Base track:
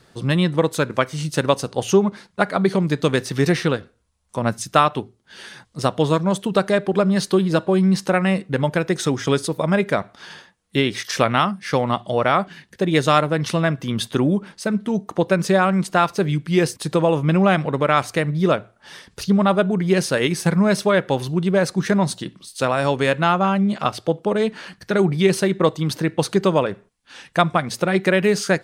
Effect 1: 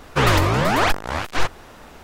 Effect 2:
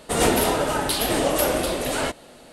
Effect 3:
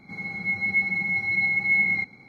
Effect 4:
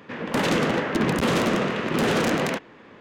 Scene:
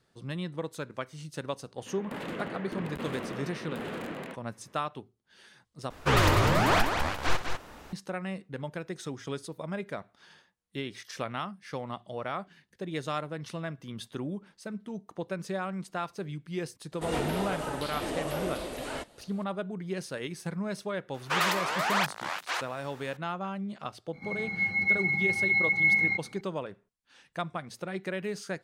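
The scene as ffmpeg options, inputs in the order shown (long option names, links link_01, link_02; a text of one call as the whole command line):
ffmpeg -i bed.wav -i cue0.wav -i cue1.wav -i cue2.wav -i cue3.wav -filter_complex "[1:a]asplit=2[link_01][link_02];[0:a]volume=-17dB[link_03];[4:a]equalizer=frequency=5800:width_type=o:width=0.76:gain=-11.5[link_04];[link_01]aecho=1:1:61.22|198.3:0.282|0.501[link_05];[2:a]acrossover=split=4300[link_06][link_07];[link_07]acompressor=threshold=-35dB:ratio=4:attack=1:release=60[link_08];[link_06][link_08]amix=inputs=2:normalize=0[link_09];[link_02]highpass=770[link_10];[link_03]asplit=2[link_11][link_12];[link_11]atrim=end=5.904[link_13];[link_05]atrim=end=2.03,asetpts=PTS-STARTPTS,volume=-6.5dB[link_14];[link_12]atrim=start=7.926[link_15];[link_04]atrim=end=3,asetpts=PTS-STARTPTS,volume=-15dB,afade=type=in:duration=0.004:curve=hsin,afade=type=out:start_time=2.996:duration=0.004:curve=hsin,adelay=1770[link_16];[link_09]atrim=end=2.52,asetpts=PTS-STARTPTS,volume=-11.5dB,afade=type=in:duration=0.004:curve=hsin,afade=type=out:start_time=2.516:duration=0.004:curve=hsin,adelay=16920[link_17];[link_10]atrim=end=2.03,asetpts=PTS-STARTPTS,volume=-6.5dB,afade=type=in:duration=0.004:curve=hsin,afade=type=out:start_time=2.026:duration=0.004:curve=hsin,adelay=21140[link_18];[3:a]atrim=end=2.28,asetpts=PTS-STARTPTS,volume=-2dB,afade=type=in:duration=0.004:curve=hsin,afade=type=out:start_time=2.276:duration=0.004:curve=hsin,adelay=24130[link_19];[link_13][link_14]acrossfade=duration=0.004:curve1=hsin:curve2=hsin[link_20];[link_20][link_15]acrossfade=duration=0.004:curve1=hsin:curve2=hsin[link_21];[link_21][link_16][link_17][link_18][link_19]amix=inputs=5:normalize=0" out.wav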